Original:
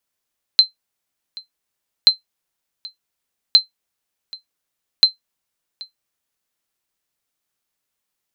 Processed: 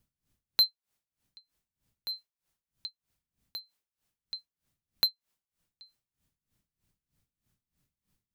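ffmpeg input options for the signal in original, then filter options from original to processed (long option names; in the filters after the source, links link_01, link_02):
-f lavfi -i "aevalsrc='0.891*(sin(2*PI*4100*mod(t,1.48))*exp(-6.91*mod(t,1.48)/0.13)+0.0708*sin(2*PI*4100*max(mod(t,1.48)-0.78,0))*exp(-6.91*max(mod(t,1.48)-0.78,0)/0.13))':duration=5.92:sample_rate=44100"
-filter_complex "[0:a]acrossover=split=200|2000[link_01][link_02][link_03];[link_01]acompressor=mode=upward:threshold=-57dB:ratio=2.5[link_04];[link_03]asoftclip=type=tanh:threshold=-18.5dB[link_05];[link_04][link_02][link_05]amix=inputs=3:normalize=0,aeval=exprs='val(0)*pow(10,-20*(0.5-0.5*cos(2*PI*3.2*n/s))/20)':channel_layout=same"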